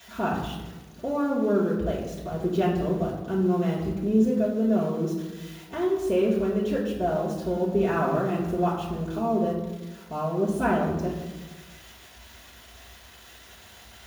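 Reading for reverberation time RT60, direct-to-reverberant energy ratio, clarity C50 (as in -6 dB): 1.2 s, -8.5 dB, 3.5 dB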